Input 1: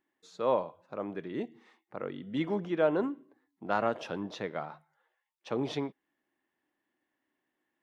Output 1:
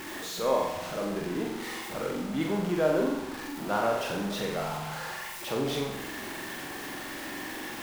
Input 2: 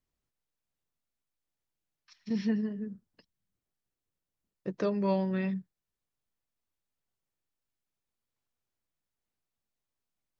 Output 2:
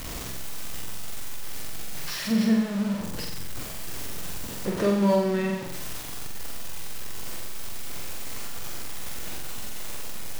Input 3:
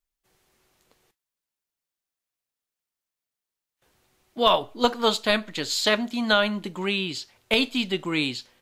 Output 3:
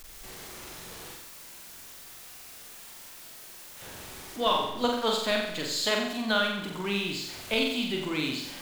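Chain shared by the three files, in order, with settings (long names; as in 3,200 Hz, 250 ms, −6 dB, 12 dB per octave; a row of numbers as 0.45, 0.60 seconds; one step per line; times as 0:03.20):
converter with a step at zero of −32 dBFS
flutter between parallel walls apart 7.7 metres, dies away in 0.79 s
normalise the peak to −12 dBFS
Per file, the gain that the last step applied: −2.0, +3.0, −8.0 decibels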